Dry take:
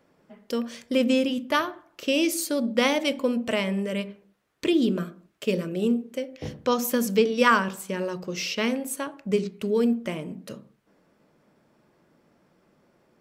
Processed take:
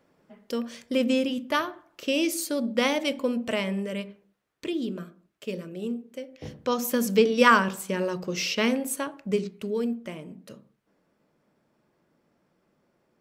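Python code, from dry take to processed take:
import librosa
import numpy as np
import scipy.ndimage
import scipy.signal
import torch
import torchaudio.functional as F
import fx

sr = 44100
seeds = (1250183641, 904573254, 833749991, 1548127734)

y = fx.gain(x, sr, db=fx.line((3.72, -2.0), (4.72, -8.0), (6.01, -8.0), (7.3, 1.5), (8.9, 1.5), (9.95, -6.5)))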